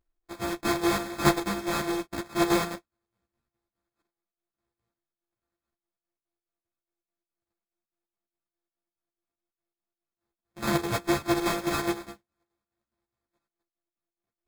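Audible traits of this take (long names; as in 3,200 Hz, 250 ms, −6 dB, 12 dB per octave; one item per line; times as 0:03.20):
a buzz of ramps at a fixed pitch in blocks of 128 samples
chopped level 4.8 Hz, depth 60%, duty 65%
aliases and images of a low sample rate 2,900 Hz, jitter 0%
a shimmering, thickened sound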